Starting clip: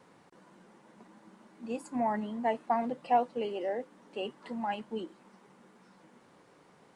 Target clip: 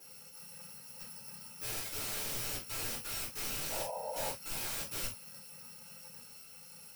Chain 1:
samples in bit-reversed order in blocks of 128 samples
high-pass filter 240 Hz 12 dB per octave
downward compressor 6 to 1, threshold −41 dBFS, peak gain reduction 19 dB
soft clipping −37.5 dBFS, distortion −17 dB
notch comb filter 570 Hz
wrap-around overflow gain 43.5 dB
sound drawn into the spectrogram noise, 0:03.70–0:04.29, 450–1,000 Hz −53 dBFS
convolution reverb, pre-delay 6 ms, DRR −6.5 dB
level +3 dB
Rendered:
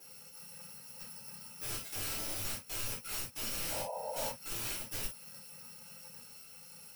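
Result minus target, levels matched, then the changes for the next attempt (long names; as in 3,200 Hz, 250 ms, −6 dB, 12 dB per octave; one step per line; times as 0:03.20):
downward compressor: peak gain reduction +9 dB
change: downward compressor 6 to 1, threshold −30 dBFS, peak gain reduction 9.5 dB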